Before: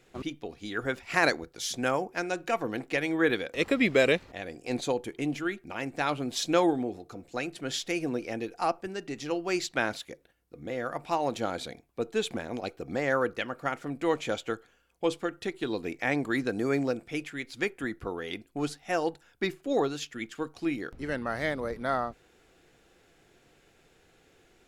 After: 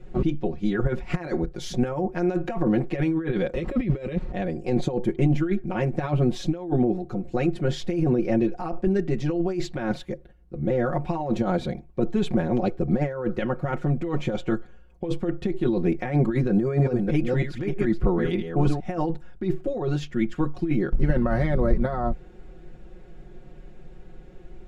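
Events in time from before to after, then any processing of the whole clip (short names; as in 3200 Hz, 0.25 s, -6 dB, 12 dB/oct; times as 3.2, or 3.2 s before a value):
16.48–18.99 reverse delay 0.314 s, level -7 dB
whole clip: comb 5.5 ms, depth 92%; negative-ratio compressor -30 dBFS, ratio -1; tilt -4.5 dB/oct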